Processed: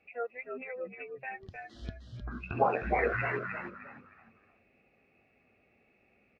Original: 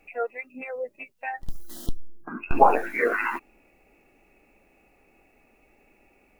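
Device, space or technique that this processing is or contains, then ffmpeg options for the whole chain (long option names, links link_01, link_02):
frequency-shifting delay pedal into a guitar cabinet: -filter_complex "[0:a]asplit=5[link_01][link_02][link_03][link_04][link_05];[link_02]adelay=308,afreqshift=-63,volume=-5dB[link_06];[link_03]adelay=616,afreqshift=-126,volume=-14.9dB[link_07];[link_04]adelay=924,afreqshift=-189,volume=-24.8dB[link_08];[link_05]adelay=1232,afreqshift=-252,volume=-34.7dB[link_09];[link_01][link_06][link_07][link_08][link_09]amix=inputs=5:normalize=0,highpass=89,equalizer=frequency=94:width_type=q:width=4:gain=7,equalizer=frequency=250:width_type=q:width=4:gain=5,equalizer=frequency=910:width_type=q:width=4:gain=-9,lowpass=frequency=4500:width=0.5412,lowpass=frequency=4500:width=1.3066,equalizer=frequency=290:width=3.7:gain=-9.5,volume=-6.5dB"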